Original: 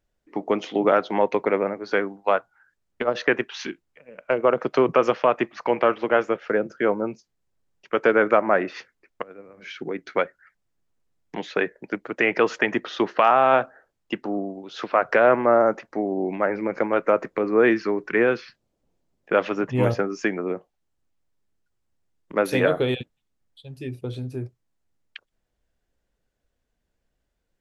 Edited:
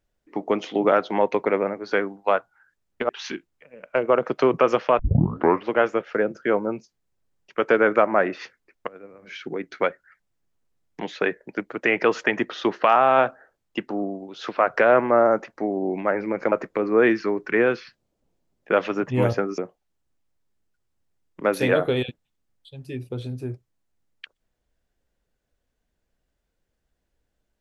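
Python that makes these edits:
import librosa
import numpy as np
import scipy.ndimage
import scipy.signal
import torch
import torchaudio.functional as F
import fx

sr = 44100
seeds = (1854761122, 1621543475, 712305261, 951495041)

y = fx.edit(x, sr, fx.cut(start_s=3.09, length_s=0.35),
    fx.tape_start(start_s=5.34, length_s=0.68),
    fx.cut(start_s=16.87, length_s=0.26),
    fx.cut(start_s=20.19, length_s=0.31), tone=tone)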